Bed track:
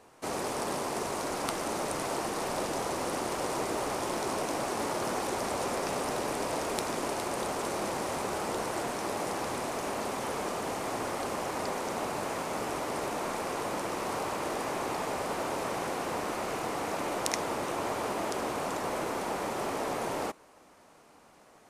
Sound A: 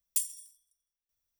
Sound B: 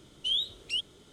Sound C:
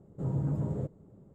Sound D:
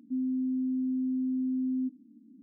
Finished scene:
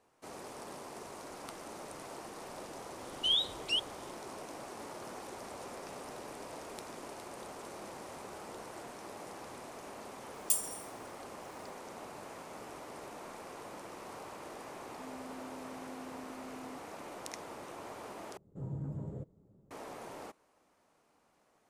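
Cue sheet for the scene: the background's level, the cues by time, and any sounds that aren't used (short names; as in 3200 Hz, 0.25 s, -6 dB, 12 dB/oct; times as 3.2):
bed track -13.5 dB
2.99 add B -0.5 dB
10.34 add A -1 dB + G.711 law mismatch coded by mu
14.89 add D -11 dB + limiter -35.5 dBFS
18.37 replace with C -9 dB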